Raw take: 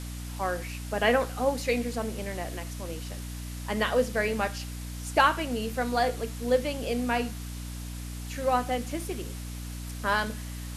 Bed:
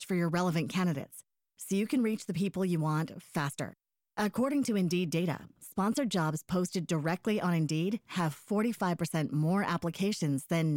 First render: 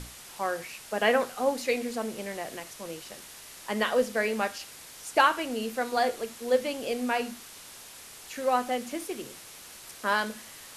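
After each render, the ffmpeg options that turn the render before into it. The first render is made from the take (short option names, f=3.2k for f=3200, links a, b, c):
-af "bandreject=f=60:t=h:w=6,bandreject=f=120:t=h:w=6,bandreject=f=180:t=h:w=6,bandreject=f=240:t=h:w=6,bandreject=f=300:t=h:w=6"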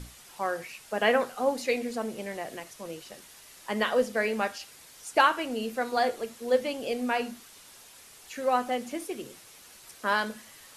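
-af "afftdn=nr=6:nf=-47"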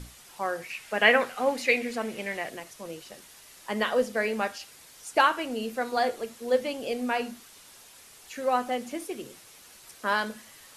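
-filter_complex "[0:a]asettb=1/sr,asplit=3[a][b][c];[a]atrim=end=0.704[d];[b]atrim=start=0.7:end=2.5,asetpts=PTS-STARTPTS,afade=t=in:d=0.004:c=qsin,afade=t=out:st=1.796:d=0.004:c=qsin,equalizer=f=2.2k:w=1.2:g=9.5[e];[c]atrim=start=2.496[f];[d][e]acrossfade=d=0.004:c1=hsin:c2=qsin[g];[g][f]acrossfade=d=0.004:c1=qsin:c2=hsin"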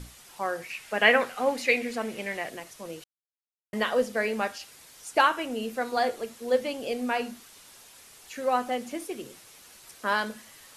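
-filter_complex "[0:a]asettb=1/sr,asplit=3[a][b][c];[a]atrim=end=5.284[d];[b]atrim=start=5.28:end=5.71,asetpts=PTS-STARTPTS,afade=t=in:d=0.004:c=qsin,afade=t=out:st=0.426:d=0.004:c=qsin,bandreject=f=4.5k:w=10[e];[c]atrim=start=5.706[f];[d][e]acrossfade=d=0.004:c1=hsin:c2=qsin[g];[g][f]acrossfade=d=0.004:c1=qsin:c2=hsin,asplit=3[h][i][j];[h]atrim=end=3.04,asetpts=PTS-STARTPTS,afade=t=out:st=3.036:d=0.004:c=hsin[k];[i]atrim=start=3.04:end=3.73,asetpts=PTS-STARTPTS,volume=0[l];[j]atrim=start=3.73,asetpts=PTS-STARTPTS,afade=t=in:d=0.004:c=hsin[m];[k][l][m]concat=n=3:v=0:a=1"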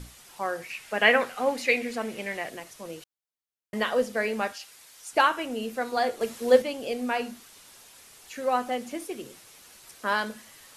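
-filter_complex "[0:a]asettb=1/sr,asplit=3[a][b][c];[a]atrim=end=4.534[d];[b]atrim=start=4.53:end=5.13,asetpts=PTS-STARTPTS,afade=t=in:d=0.004:c=qsin,afade=t=out:st=0.596:d=0.004:c=qsin,lowshelf=f=460:g=-11[e];[c]atrim=start=5.126[f];[d][e]acrossfade=d=0.004:c1=hsin:c2=qsin[g];[g][f]acrossfade=d=0.004:c1=qsin:c2=hsin,asplit=3[h][i][j];[h]atrim=end=6.212[k];[i]atrim=start=6.208:end=6.622,asetpts=PTS-STARTPTS,volume=6dB[l];[j]atrim=start=6.618[m];[k][l]acrossfade=d=0.004:c1=hsin:c2=hsin[n];[n][m]acrossfade=d=0.004:c1=hsin:c2=hsin"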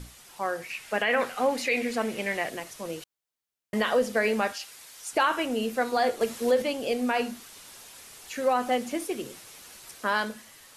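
-af "dynaudnorm=f=140:g=11:m=4dB,alimiter=limit=-14.5dB:level=0:latency=1:release=61"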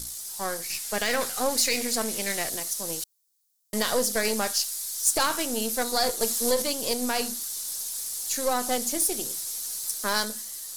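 -af "aeval=exprs='if(lt(val(0),0),0.447*val(0),val(0))':c=same,aexciter=amount=4.9:drive=7.8:freq=3.9k"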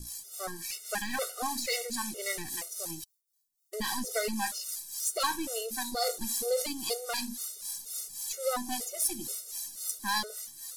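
-filter_complex "[0:a]acrossover=split=500[a][b];[a]aeval=exprs='val(0)*(1-0.7/2+0.7/2*cos(2*PI*3.7*n/s))':c=same[c];[b]aeval=exprs='val(0)*(1-0.7/2-0.7/2*cos(2*PI*3.7*n/s))':c=same[d];[c][d]amix=inputs=2:normalize=0,afftfilt=real='re*gt(sin(2*PI*2.1*pts/sr)*(1-2*mod(floor(b*sr/1024/380),2)),0)':imag='im*gt(sin(2*PI*2.1*pts/sr)*(1-2*mod(floor(b*sr/1024/380),2)),0)':win_size=1024:overlap=0.75"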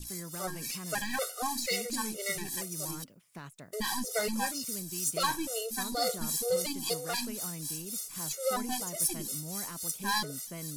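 -filter_complex "[1:a]volume=-13.5dB[a];[0:a][a]amix=inputs=2:normalize=0"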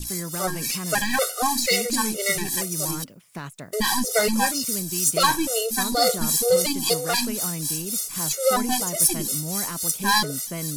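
-af "volume=10.5dB"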